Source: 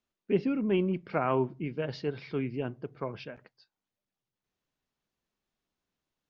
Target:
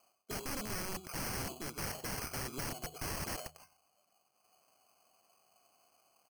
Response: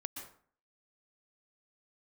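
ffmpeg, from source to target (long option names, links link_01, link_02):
-filter_complex "[0:a]asplit=2[link_01][link_02];[link_02]highpass=frequency=720:poles=1,volume=18dB,asoftclip=type=tanh:threshold=-13dB[link_03];[link_01][link_03]amix=inputs=2:normalize=0,lowpass=frequency=4400:poles=1,volume=-6dB,areverse,acompressor=threshold=-34dB:ratio=12,areverse,asplit=3[link_04][link_05][link_06];[link_04]bandpass=frequency=730:width_type=q:width=8,volume=0dB[link_07];[link_05]bandpass=frequency=1090:width_type=q:width=8,volume=-6dB[link_08];[link_06]bandpass=frequency=2440:width_type=q:width=8,volume=-9dB[link_09];[link_07][link_08][link_09]amix=inputs=3:normalize=0,highshelf=frequency=5100:gain=-9.5,bandreject=frequency=3700:width=10,asplit=2[link_10][link_11];[link_11]aecho=0:1:100:0.15[link_12];[link_10][link_12]amix=inputs=2:normalize=0,acrusher=samples=12:mix=1:aa=0.000001,aeval=exprs='(mod(376*val(0)+1,2)-1)/376':channel_layout=same,alimiter=level_in=32dB:limit=-24dB:level=0:latency=1:release=491,volume=-32dB,bass=frequency=250:gain=9,treble=frequency=4000:gain=11,bandreject=frequency=77.16:width_type=h:width=4,bandreject=frequency=154.32:width_type=h:width=4,volume=18dB"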